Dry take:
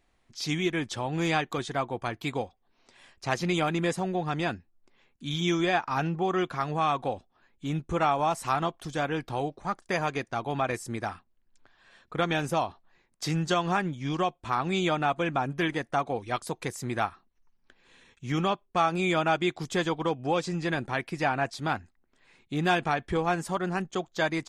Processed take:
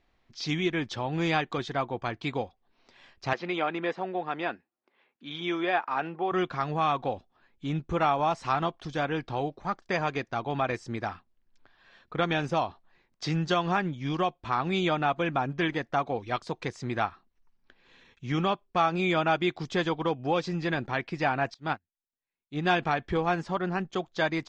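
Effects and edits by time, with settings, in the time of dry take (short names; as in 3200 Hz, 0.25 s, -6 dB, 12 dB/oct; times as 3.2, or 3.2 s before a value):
3.33–6.32 BPF 350–2900 Hz
21.54–22.67 upward expander 2.5:1, over -48 dBFS
23.42–23.86 high shelf 8300 Hz -10.5 dB
whole clip: LPF 5500 Hz 24 dB/oct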